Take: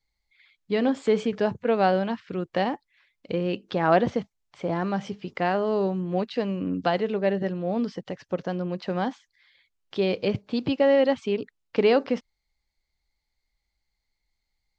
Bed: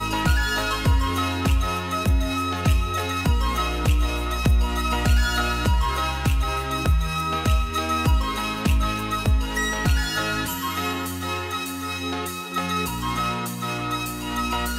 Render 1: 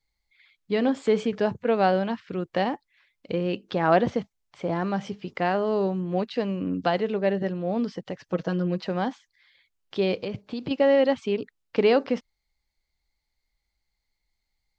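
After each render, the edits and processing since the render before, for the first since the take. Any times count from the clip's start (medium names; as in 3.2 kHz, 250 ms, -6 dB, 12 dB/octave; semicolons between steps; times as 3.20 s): 8.26–8.88 s: comb 6.2 ms, depth 78%; 10.18–10.71 s: compression, threshold -27 dBFS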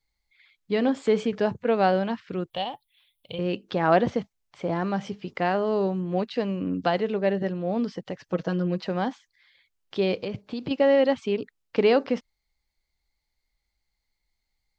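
2.50–3.39 s: FFT filter 140 Hz 0 dB, 200 Hz -13 dB, 320 Hz -16 dB, 750 Hz -2 dB, 1.2 kHz -9 dB, 1.8 kHz -14 dB, 3.4 kHz +10 dB, 4.8 kHz -8 dB, 6.9 kHz -10 dB, 9.7 kHz +13 dB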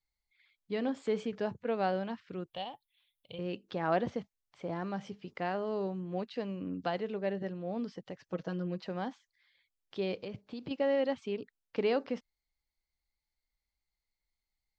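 trim -10 dB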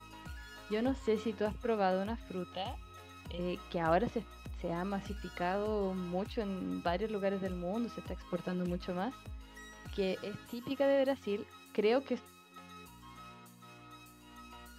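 add bed -27 dB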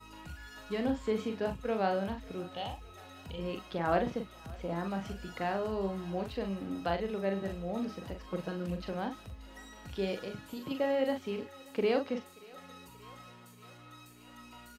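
doubling 41 ms -6 dB; thinning echo 581 ms, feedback 81%, high-pass 510 Hz, level -21.5 dB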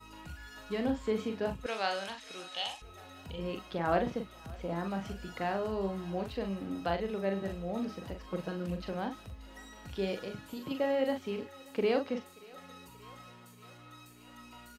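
1.66–2.82 s: frequency weighting ITU-R 468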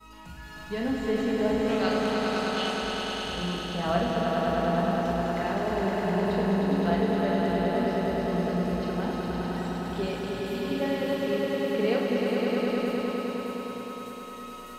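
echo with a slow build-up 103 ms, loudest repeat 5, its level -4 dB; simulated room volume 510 m³, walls furnished, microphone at 1.5 m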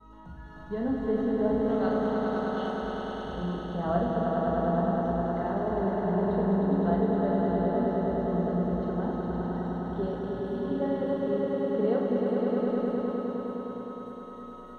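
boxcar filter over 18 samples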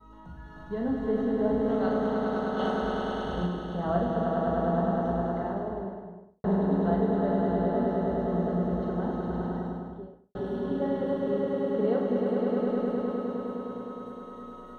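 2.59–3.47 s: gain +3.5 dB; 5.15–6.44 s: studio fade out; 9.43–10.35 s: studio fade out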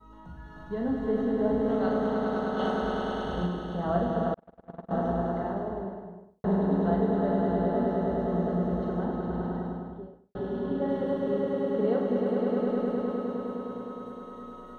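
4.34–4.91 s: gate -23 dBFS, range -46 dB; 9.04–10.89 s: distance through air 84 m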